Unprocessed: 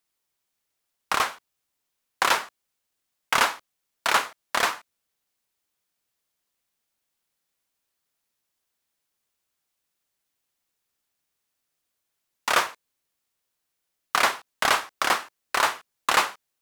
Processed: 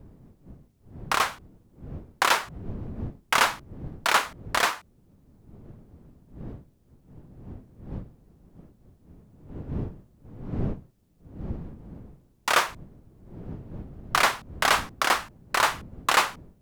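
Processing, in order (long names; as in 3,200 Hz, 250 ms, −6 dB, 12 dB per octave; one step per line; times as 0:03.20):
wind on the microphone 190 Hz −40 dBFS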